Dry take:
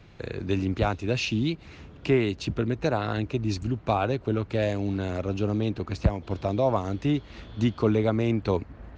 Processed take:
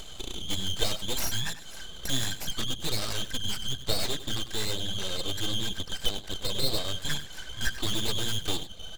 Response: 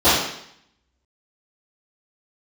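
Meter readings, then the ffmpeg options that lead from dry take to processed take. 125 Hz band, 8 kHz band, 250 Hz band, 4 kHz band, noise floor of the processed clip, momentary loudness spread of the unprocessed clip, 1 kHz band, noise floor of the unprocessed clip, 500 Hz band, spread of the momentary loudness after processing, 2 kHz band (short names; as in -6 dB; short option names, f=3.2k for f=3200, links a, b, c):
-10.0 dB, n/a, -13.0 dB, +11.0 dB, -42 dBFS, 6 LU, -10.0 dB, -48 dBFS, -12.0 dB, 5 LU, -1.5 dB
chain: -filter_complex "[0:a]afftfilt=real='real(if(lt(b,272),68*(eq(floor(b/68),0)*2+eq(floor(b/68),1)*0+eq(floor(b/68),2)*3+eq(floor(b/68),3)*1)+mod(b,68),b),0)':imag='imag(if(lt(b,272),68*(eq(floor(b/68),0)*2+eq(floor(b/68),1)*0+eq(floor(b/68),2)*3+eq(floor(b/68),3)*1)+mod(b,68),b),0)':win_size=2048:overlap=0.75,equalizer=f=6.4k:w=4.4:g=10.5,aecho=1:1:1.4:0.51,bandreject=f=117.4:t=h:w=4,bandreject=f=234.8:t=h:w=4,bandreject=f=352.2:t=h:w=4,asubboost=boost=11:cutoff=52,flanger=delay=2.1:depth=4.5:regen=-11:speed=0.65:shape=sinusoidal,asplit=2[a][b];[b]aeval=exprs='(mod(12.6*val(0)+1,2)-1)/12.6':c=same,volume=-11.5dB[c];[a][c]amix=inputs=2:normalize=0,acompressor=mode=upward:threshold=-31dB:ratio=2.5,asplit=2[d][e];[e]aecho=0:1:97:0.224[f];[d][f]amix=inputs=2:normalize=0,aeval=exprs='abs(val(0))':c=same"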